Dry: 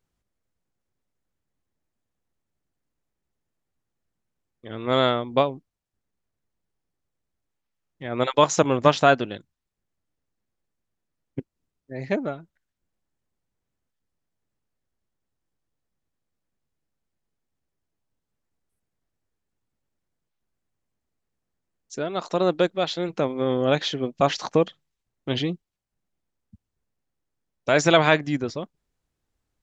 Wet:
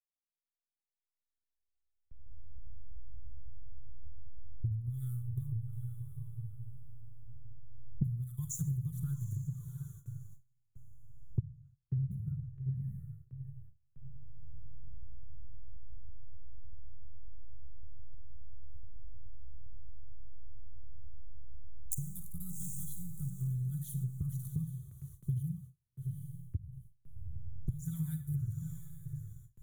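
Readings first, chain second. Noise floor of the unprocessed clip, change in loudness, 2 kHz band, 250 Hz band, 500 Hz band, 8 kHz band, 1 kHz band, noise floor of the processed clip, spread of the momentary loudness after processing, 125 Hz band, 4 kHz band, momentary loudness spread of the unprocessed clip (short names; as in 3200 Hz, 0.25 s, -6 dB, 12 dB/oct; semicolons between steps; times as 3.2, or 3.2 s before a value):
-82 dBFS, -17.0 dB, under -40 dB, -15.0 dB, under -40 dB, n/a, under -40 dB, under -85 dBFS, 22 LU, -1.5 dB, under -40 dB, 21 LU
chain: Wiener smoothing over 9 samples; recorder AGC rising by 11 dB/s; inverse Chebyshev band-stop 260–5400 Hz, stop band 50 dB; on a send: diffused feedback echo 0.781 s, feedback 42%, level -7.5 dB; on the sum: Schroeder reverb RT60 0.6 s, DRR 9 dB; envelope flanger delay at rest 4.7 ms, full sweep at -34.5 dBFS; gate with hold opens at -49 dBFS; bell 290 Hz -7 dB 0.48 oct; compressor 12:1, threshold -45 dBFS, peak gain reduction 22.5 dB; bell 770 Hz -14 dB 0.96 oct; three-band expander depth 70%; gain +13.5 dB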